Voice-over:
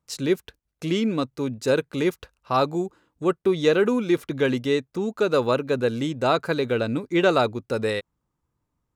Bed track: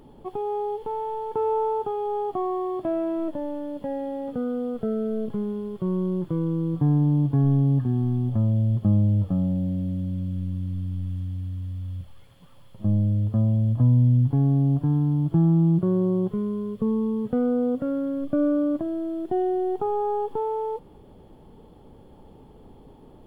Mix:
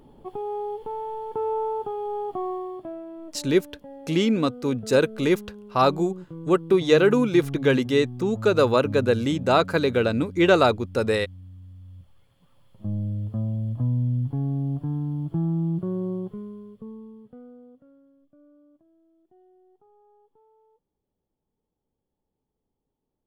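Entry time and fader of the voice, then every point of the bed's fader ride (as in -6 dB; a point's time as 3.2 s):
3.25 s, +2.0 dB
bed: 2.5 s -2.5 dB
3.05 s -12.5 dB
11.79 s -12.5 dB
13.06 s -6 dB
16.12 s -6 dB
18.32 s -34 dB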